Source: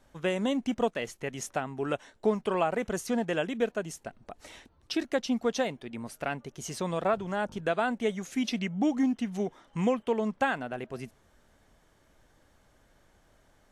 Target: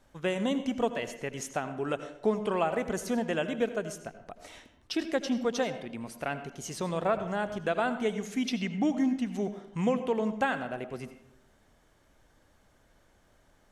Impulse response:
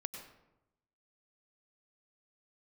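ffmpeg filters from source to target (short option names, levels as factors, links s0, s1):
-filter_complex "[0:a]asplit=2[s0][s1];[1:a]atrim=start_sample=2205,asetrate=52920,aresample=44100[s2];[s1][s2]afir=irnorm=-1:irlink=0,volume=1.68[s3];[s0][s3]amix=inputs=2:normalize=0,volume=0.447"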